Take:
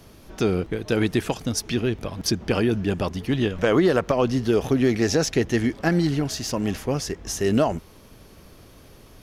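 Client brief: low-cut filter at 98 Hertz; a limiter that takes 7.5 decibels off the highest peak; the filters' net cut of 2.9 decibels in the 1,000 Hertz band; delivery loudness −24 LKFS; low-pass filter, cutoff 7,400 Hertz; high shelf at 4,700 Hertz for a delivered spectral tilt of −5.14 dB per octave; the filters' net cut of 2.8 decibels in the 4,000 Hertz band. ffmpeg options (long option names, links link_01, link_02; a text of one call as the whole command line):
ffmpeg -i in.wav -af "highpass=98,lowpass=7400,equalizer=frequency=1000:width_type=o:gain=-4,equalizer=frequency=4000:width_type=o:gain=-8.5,highshelf=frequency=4700:gain=8,volume=3.5dB,alimiter=limit=-12.5dB:level=0:latency=1" out.wav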